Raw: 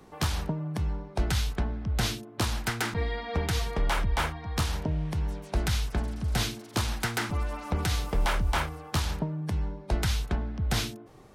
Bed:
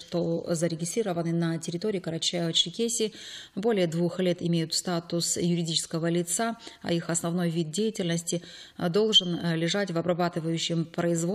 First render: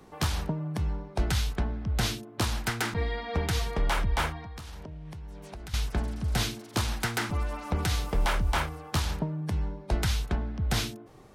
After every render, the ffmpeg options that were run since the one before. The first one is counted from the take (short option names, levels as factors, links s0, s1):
-filter_complex "[0:a]asettb=1/sr,asplit=3[s0][s1][s2];[s0]atrim=end=4.424[s3];[s1]atrim=start=4.42:end=5.74,asetpts=PTS-STARTPTS,afade=t=in:d=0.004:c=qsin,afade=t=out:st=1.316:d=0.004:c=qsin,acompressor=threshold=0.0126:ratio=10:attack=3.2:release=140:knee=1:detection=peak[s4];[s2]atrim=start=5.736[s5];[s3][s4]acrossfade=d=0.004:c1=hsin:c2=qsin[s6];[s6][s5]acrossfade=d=0.004:c1=qsin:c2=hsin"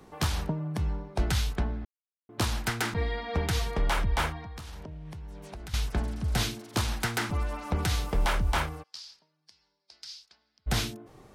-filter_complex "[0:a]asplit=3[s0][s1][s2];[s0]afade=t=out:st=8.82:d=0.02[s3];[s1]bandpass=f=4900:t=q:w=6.3,afade=t=in:st=8.82:d=0.02,afade=t=out:st=10.66:d=0.02[s4];[s2]afade=t=in:st=10.66:d=0.02[s5];[s3][s4][s5]amix=inputs=3:normalize=0,asplit=3[s6][s7][s8];[s6]atrim=end=1.85,asetpts=PTS-STARTPTS,afade=t=out:st=1.846:d=0.004:c=hsin[s9];[s7]atrim=start=1.85:end=2.29,asetpts=PTS-STARTPTS,volume=0[s10];[s8]atrim=start=2.29,asetpts=PTS-STARTPTS,afade=t=in:d=0.004:c=hsin[s11];[s9][s10][s11]concat=n=3:v=0:a=1"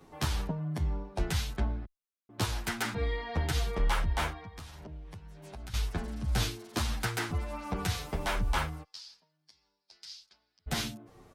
-filter_complex "[0:a]asplit=2[s0][s1];[s1]adelay=9.2,afreqshift=-1.5[s2];[s0][s2]amix=inputs=2:normalize=1"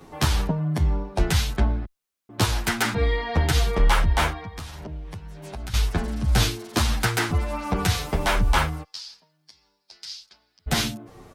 -af "volume=2.99"